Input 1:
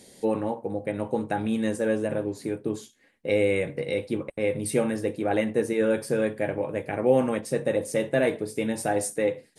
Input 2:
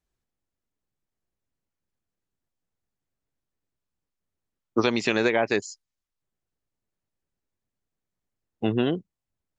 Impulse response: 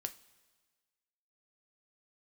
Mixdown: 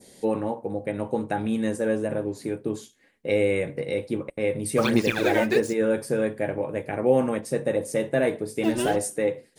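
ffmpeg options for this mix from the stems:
-filter_complex "[0:a]adynamicequalizer=threshold=0.00631:dfrequency=3100:dqfactor=1:tfrequency=3100:tqfactor=1:attack=5:release=100:ratio=0.375:range=2:mode=cutabove:tftype=bell,volume=0dB,asplit=2[link_01][link_02];[link_02]volume=-22dB[link_03];[1:a]acrusher=bits=5:mix=0:aa=0.5,aphaser=in_gain=1:out_gain=1:delay=3.3:decay=0.77:speed=1.2:type=sinusoidal,volume=-8.5dB,asplit=2[link_04][link_05];[link_05]volume=-4dB[link_06];[2:a]atrim=start_sample=2205[link_07];[link_03][link_06]amix=inputs=2:normalize=0[link_08];[link_08][link_07]afir=irnorm=-1:irlink=0[link_09];[link_01][link_04][link_09]amix=inputs=3:normalize=0"

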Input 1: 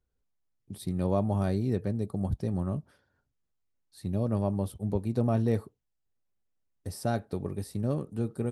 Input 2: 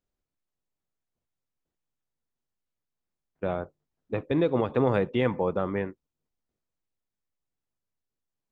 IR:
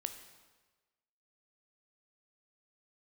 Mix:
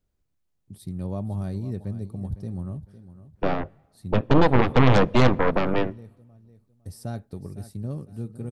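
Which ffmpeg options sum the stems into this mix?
-filter_complex "[0:a]bass=frequency=250:gain=8,treble=frequency=4000:gain=4,volume=-8dB,asplit=2[link_01][link_02];[link_02]volume=-14.5dB[link_03];[1:a]equalizer=frequency=69:width=0.34:gain=10.5,aeval=exprs='0.355*(cos(1*acos(clip(val(0)/0.355,-1,1)))-cos(1*PI/2))+0.0355*(cos(5*acos(clip(val(0)/0.355,-1,1)))-cos(5*PI/2))+0.158*(cos(6*acos(clip(val(0)/0.355,-1,1)))-cos(6*PI/2))':channel_layout=same,volume=-1.5dB,asplit=3[link_04][link_05][link_06];[link_05]volume=-19dB[link_07];[link_06]apad=whole_len=375346[link_08];[link_01][link_08]sidechaincompress=threshold=-39dB:ratio=8:attack=16:release=295[link_09];[2:a]atrim=start_sample=2205[link_10];[link_07][link_10]afir=irnorm=-1:irlink=0[link_11];[link_03]aecho=0:1:506|1012|1518|2024:1|0.31|0.0961|0.0298[link_12];[link_09][link_04][link_11][link_12]amix=inputs=4:normalize=0"

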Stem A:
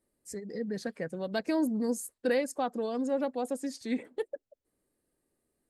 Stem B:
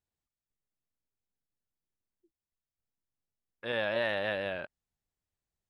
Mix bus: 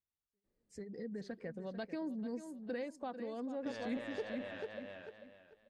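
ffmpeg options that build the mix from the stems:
ffmpeg -i stem1.wav -i stem2.wav -filter_complex "[0:a]lowshelf=frequency=120:gain=8.5,volume=-1dB,asplit=2[link_01][link_02];[link_02]volume=-6dB[link_03];[1:a]aeval=exprs='clip(val(0),-1,0.0355)':channel_layout=same,volume=-9.5dB,asplit=3[link_04][link_05][link_06];[link_05]volume=-5.5dB[link_07];[link_06]apad=whole_len=251265[link_08];[link_01][link_08]sidechaingate=range=-52dB:threshold=-49dB:ratio=16:detection=peak[link_09];[link_03][link_07]amix=inputs=2:normalize=0,aecho=0:1:442|884|1326|1768:1|0.24|0.0576|0.0138[link_10];[link_09][link_04][link_10]amix=inputs=3:normalize=0,lowpass=4600,acompressor=threshold=-42dB:ratio=2" out.wav

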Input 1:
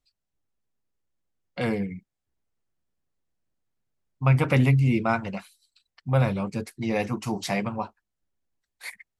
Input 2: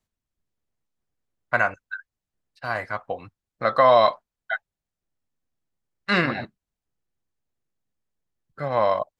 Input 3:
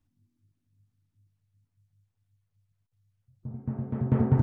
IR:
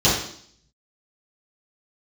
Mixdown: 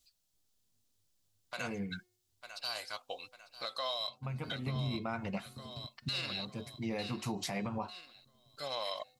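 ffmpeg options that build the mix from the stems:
-filter_complex "[0:a]bandreject=frequency=361.6:width_type=h:width=4,bandreject=frequency=723.2:width_type=h:width=4,bandreject=frequency=1084.8:width_type=h:width=4,bandreject=frequency=1446.4:width_type=h:width=4,bandreject=frequency=1808:width_type=h:width=4,bandreject=frequency=2169.6:width_type=h:width=4,bandreject=frequency=2531.2:width_type=h:width=4,bandreject=frequency=2892.8:width_type=h:width=4,bandreject=frequency=3254.4:width_type=h:width=4,bandreject=frequency=3616:width_type=h:width=4,bandreject=frequency=3977.6:width_type=h:width=4,bandreject=frequency=4339.2:width_type=h:width=4,bandreject=frequency=4700.8:width_type=h:width=4,bandreject=frequency=5062.4:width_type=h:width=4,bandreject=frequency=5424:width_type=h:width=4,bandreject=frequency=5785.6:width_type=h:width=4,bandreject=frequency=6147.2:width_type=h:width=4,bandreject=frequency=6508.8:width_type=h:width=4,bandreject=frequency=6870.4:width_type=h:width=4,bandreject=frequency=7232:width_type=h:width=4,bandreject=frequency=7593.6:width_type=h:width=4,bandreject=frequency=7955.2:width_type=h:width=4,acompressor=threshold=-22dB:ratio=6,volume=0.5dB[link_01];[1:a]bass=frequency=250:gain=-13,treble=frequency=4000:gain=-8,aexciter=amount=14.1:drive=9.4:freq=3000,volume=-12dB,asplit=3[link_02][link_03][link_04];[link_03]volume=-18.5dB[link_05];[2:a]adelay=550,volume=-17.5dB,asplit=2[link_06][link_07];[link_07]volume=-9dB[link_08];[link_04]apad=whole_len=405673[link_09];[link_01][link_09]sidechaincompress=threshold=-38dB:ratio=4:attack=12:release=980[link_10];[link_02][link_06]amix=inputs=2:normalize=0,bandreject=frequency=252.6:width_type=h:width=4,bandreject=frequency=505.2:width_type=h:width=4,bandreject=frequency=757.8:width_type=h:width=4,alimiter=limit=-19dB:level=0:latency=1:release=403,volume=0dB[link_11];[link_05][link_08]amix=inputs=2:normalize=0,aecho=0:1:898|1796|2694|3592|4490|5388:1|0.43|0.185|0.0795|0.0342|0.0147[link_12];[link_10][link_11][link_12]amix=inputs=3:normalize=0,alimiter=level_in=3dB:limit=-24dB:level=0:latency=1:release=194,volume=-3dB"

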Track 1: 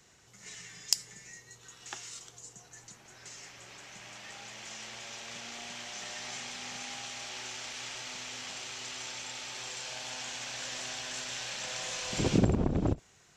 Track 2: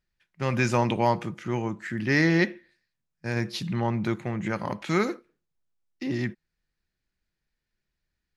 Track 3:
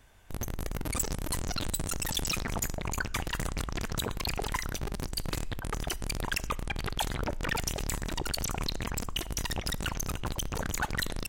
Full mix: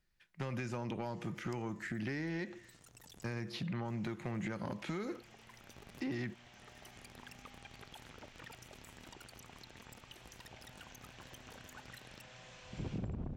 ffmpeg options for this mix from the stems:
ffmpeg -i stem1.wav -i stem2.wav -i stem3.wav -filter_complex "[0:a]bass=frequency=250:gain=11,treble=frequency=4000:gain=-12,adelay=600,volume=-15dB[link_01];[1:a]acompressor=threshold=-30dB:ratio=6,volume=1.5dB,asplit=2[link_02][link_03];[2:a]highpass=frequency=120:poles=1,alimiter=level_in=2.5dB:limit=-24dB:level=0:latency=1:release=164,volume=-2.5dB,acompressor=threshold=-42dB:ratio=3,adelay=950,volume=-9dB[link_04];[link_03]apad=whole_len=539362[link_05];[link_04][link_05]sidechaincompress=threshold=-42dB:ratio=8:attack=33:release=786[link_06];[link_01][link_02][link_06]amix=inputs=3:normalize=0,acrossover=split=580|3000[link_07][link_08][link_09];[link_07]acompressor=threshold=-36dB:ratio=4[link_10];[link_08]acompressor=threshold=-44dB:ratio=4[link_11];[link_09]acompressor=threshold=-55dB:ratio=4[link_12];[link_10][link_11][link_12]amix=inputs=3:normalize=0,asoftclip=type=tanh:threshold=-30dB" out.wav

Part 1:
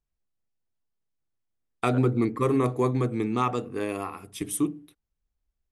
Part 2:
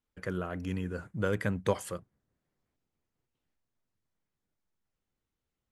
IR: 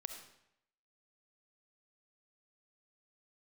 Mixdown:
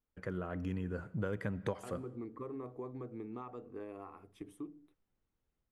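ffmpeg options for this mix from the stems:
-filter_complex "[0:a]equalizer=frequency=150:width_type=o:width=1.4:gain=-8,acompressor=threshold=-32dB:ratio=4,highshelf=frequency=2100:gain=-12,volume=-8.5dB[link_01];[1:a]dynaudnorm=framelen=400:gausssize=3:maxgain=4.5dB,volume=-4.5dB,asplit=2[link_02][link_03];[link_03]volume=-9dB[link_04];[2:a]atrim=start_sample=2205[link_05];[link_04][link_05]afir=irnorm=-1:irlink=0[link_06];[link_01][link_02][link_06]amix=inputs=3:normalize=0,highshelf=frequency=2900:gain=-11.5,acompressor=threshold=-34dB:ratio=4"

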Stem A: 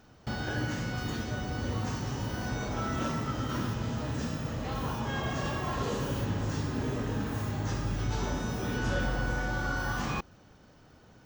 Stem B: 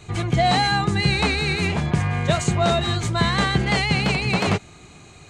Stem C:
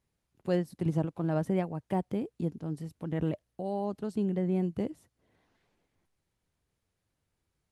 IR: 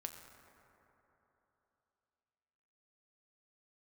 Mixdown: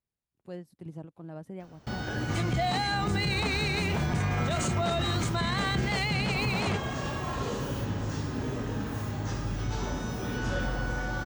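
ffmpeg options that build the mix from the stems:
-filter_complex "[0:a]adelay=1600,volume=-0.5dB[link_01];[1:a]adelay=2200,volume=-3.5dB[link_02];[2:a]volume=-12.5dB[link_03];[link_01][link_02][link_03]amix=inputs=3:normalize=0,alimiter=limit=-20dB:level=0:latency=1:release=23"

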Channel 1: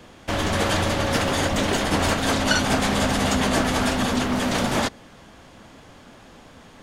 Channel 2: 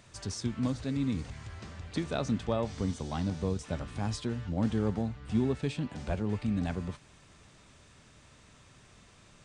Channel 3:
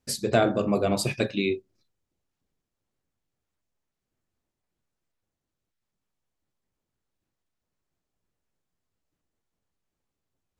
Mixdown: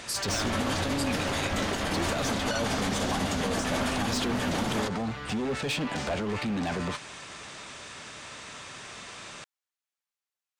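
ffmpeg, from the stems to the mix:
ffmpeg -i stem1.wav -i stem2.wav -i stem3.wav -filter_complex "[0:a]volume=-6dB[link_01];[1:a]alimiter=level_in=3.5dB:limit=-24dB:level=0:latency=1:release=16,volume=-3.5dB,aeval=exprs='clip(val(0),-1,0.0237)':channel_layout=same,asplit=2[link_02][link_03];[link_03]highpass=frequency=720:poles=1,volume=24dB,asoftclip=type=tanh:threshold=-21dB[link_04];[link_02][link_04]amix=inputs=2:normalize=0,lowpass=frequency=6600:poles=1,volume=-6dB,volume=1dB[link_05];[2:a]highpass=1300,volume=-2.5dB[link_06];[link_01][link_05][link_06]amix=inputs=3:normalize=0,alimiter=limit=-19dB:level=0:latency=1:release=94" out.wav

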